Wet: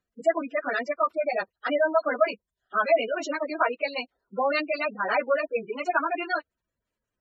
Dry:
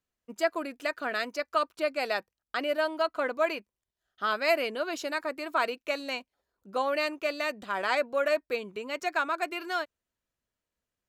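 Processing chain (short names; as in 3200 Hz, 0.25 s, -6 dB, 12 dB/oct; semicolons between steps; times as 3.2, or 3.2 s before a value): plain phase-vocoder stretch 0.65×; spectral gate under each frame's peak -15 dB strong; gain +8 dB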